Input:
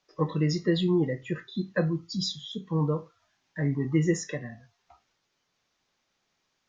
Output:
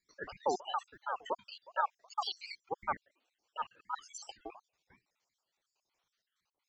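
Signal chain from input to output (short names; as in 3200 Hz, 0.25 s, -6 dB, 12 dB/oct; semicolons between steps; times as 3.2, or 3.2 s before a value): random spectral dropouts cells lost 71%; band shelf 590 Hz -8 dB; ring modulator with a swept carrier 840 Hz, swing 35%, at 2.8 Hz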